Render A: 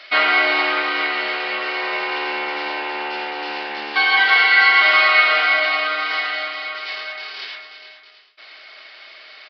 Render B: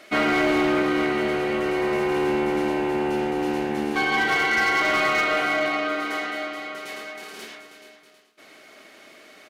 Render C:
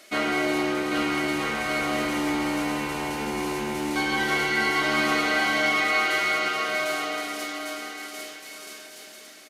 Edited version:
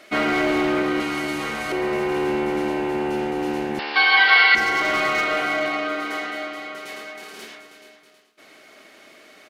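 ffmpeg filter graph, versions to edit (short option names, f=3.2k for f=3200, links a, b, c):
-filter_complex "[1:a]asplit=3[a][b][c];[a]atrim=end=1.002[d];[2:a]atrim=start=0.998:end=1.722[e];[b]atrim=start=1.718:end=3.792[f];[0:a]atrim=start=3.788:end=4.552[g];[c]atrim=start=4.548[h];[d][e]acrossfade=d=0.004:c1=hsin:c2=hsin[i];[i][f]acrossfade=d=0.004:c1=hsin:c2=hsin[j];[j][g]acrossfade=d=0.004:c1=hsin:c2=hsin[k];[k][h]acrossfade=d=0.004:c1=hsin:c2=hsin"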